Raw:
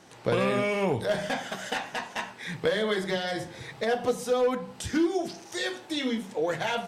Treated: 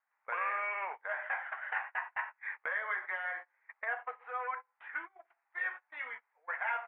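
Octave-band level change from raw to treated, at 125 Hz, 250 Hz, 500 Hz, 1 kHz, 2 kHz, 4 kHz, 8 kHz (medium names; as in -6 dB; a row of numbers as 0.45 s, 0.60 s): under -40 dB, under -40 dB, -21.0 dB, -4.5 dB, -1.0 dB, under -25 dB, under -40 dB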